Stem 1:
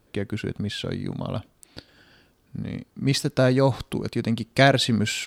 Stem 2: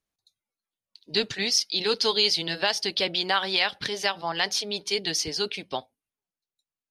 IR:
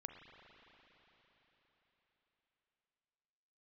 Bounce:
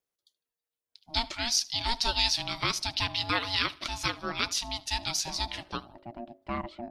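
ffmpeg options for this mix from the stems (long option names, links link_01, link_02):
-filter_complex "[0:a]lowpass=1800,bandreject=frequency=50:width_type=h:width=6,bandreject=frequency=100:width_type=h:width=6,bandreject=frequency=150:width_type=h:width=6,bandreject=frequency=200:width_type=h:width=6,adelay=1900,volume=-14dB[link_01];[1:a]volume=-1.5dB,asplit=3[link_02][link_03][link_04];[link_03]volume=-22dB[link_05];[link_04]apad=whole_len=316027[link_06];[link_01][link_06]sidechaincompress=threshold=-47dB:ratio=3:attack=7.2:release=159[link_07];[link_05]aecho=0:1:77|154|231|308|385:1|0.33|0.109|0.0359|0.0119[link_08];[link_07][link_02][link_08]amix=inputs=3:normalize=0,highshelf=frequency=11000:gain=7.5,aeval=exprs='val(0)*sin(2*PI*470*n/s)':channel_layout=same"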